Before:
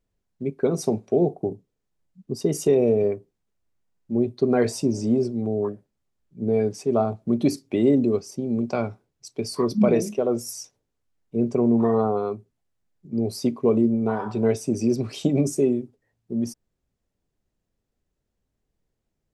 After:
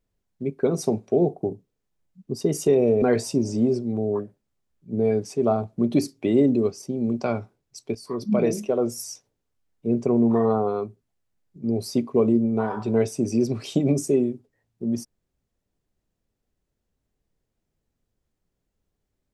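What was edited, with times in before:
3.02–4.51 s: delete
9.44–10.09 s: fade in, from -13 dB

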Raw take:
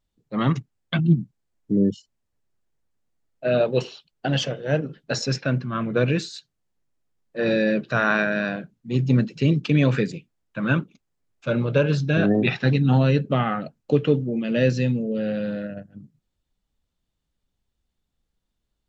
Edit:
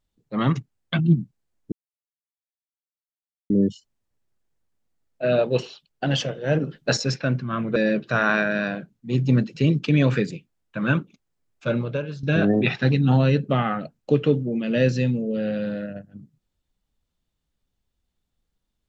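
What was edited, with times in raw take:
1.72 s: insert silence 1.78 s
4.77–5.19 s: gain +4.5 dB
5.98–7.57 s: delete
11.53–12.04 s: fade out quadratic, to -13.5 dB

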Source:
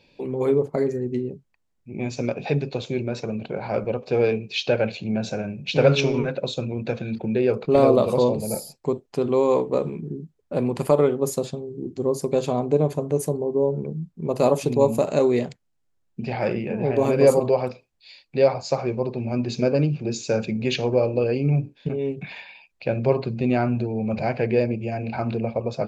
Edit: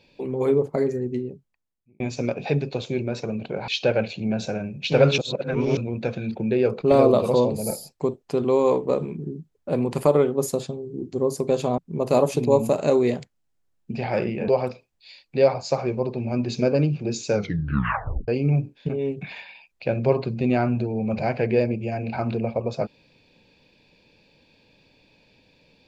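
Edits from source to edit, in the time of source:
1.01–2.00 s: fade out
3.68–4.52 s: delete
6.02–6.61 s: reverse
12.62–14.07 s: delete
16.77–17.48 s: delete
20.34 s: tape stop 0.94 s

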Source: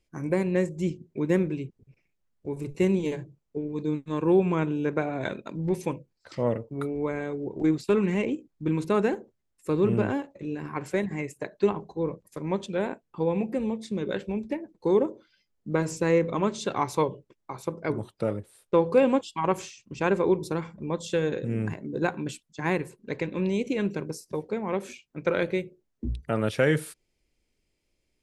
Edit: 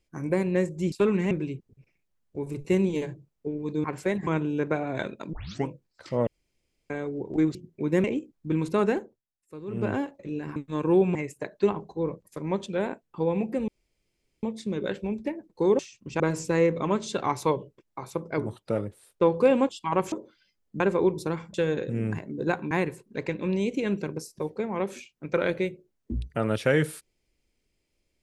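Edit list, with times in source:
0.92–1.41 s: swap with 7.81–8.20 s
3.94–4.53 s: swap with 10.72–11.15 s
5.59 s: tape start 0.34 s
6.53–7.16 s: room tone
9.12–10.10 s: dip -15.5 dB, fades 0.27 s
13.68 s: insert room tone 0.75 s
15.04–15.72 s: swap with 19.64–20.05 s
20.79–21.09 s: delete
22.26–22.64 s: delete

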